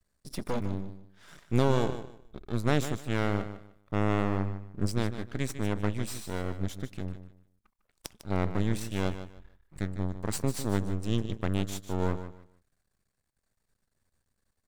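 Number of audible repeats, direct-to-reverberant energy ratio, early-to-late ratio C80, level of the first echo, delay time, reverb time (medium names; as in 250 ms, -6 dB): 2, no reverb, no reverb, -11.5 dB, 151 ms, no reverb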